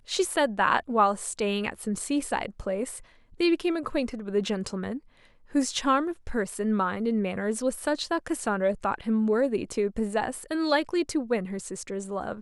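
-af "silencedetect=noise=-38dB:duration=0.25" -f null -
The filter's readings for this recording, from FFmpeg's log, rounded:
silence_start: 2.99
silence_end: 3.40 | silence_duration: 0.41
silence_start: 4.98
silence_end: 5.55 | silence_duration: 0.56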